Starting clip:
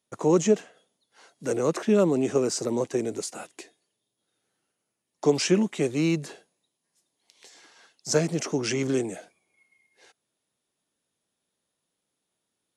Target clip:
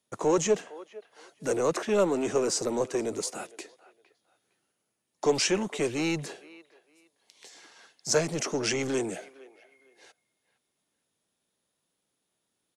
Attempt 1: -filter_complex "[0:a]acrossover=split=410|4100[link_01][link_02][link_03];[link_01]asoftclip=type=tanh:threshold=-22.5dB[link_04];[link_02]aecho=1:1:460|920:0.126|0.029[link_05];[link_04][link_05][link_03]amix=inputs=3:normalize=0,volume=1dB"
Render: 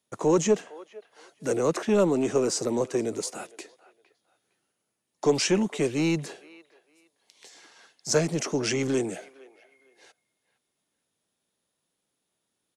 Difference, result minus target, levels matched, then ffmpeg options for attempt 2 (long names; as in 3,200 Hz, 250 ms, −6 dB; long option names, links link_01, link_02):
soft clipping: distortion −8 dB
-filter_complex "[0:a]acrossover=split=410|4100[link_01][link_02][link_03];[link_01]asoftclip=type=tanh:threshold=-33dB[link_04];[link_02]aecho=1:1:460|920:0.126|0.029[link_05];[link_04][link_05][link_03]amix=inputs=3:normalize=0,volume=1dB"